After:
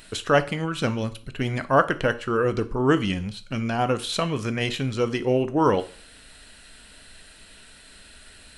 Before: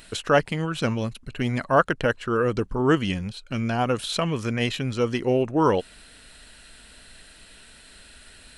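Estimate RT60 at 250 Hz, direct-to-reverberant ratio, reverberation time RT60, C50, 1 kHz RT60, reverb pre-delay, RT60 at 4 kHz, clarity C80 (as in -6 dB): 0.45 s, 11.0 dB, 0.45 s, 17.0 dB, 0.45 s, 5 ms, 0.40 s, 21.5 dB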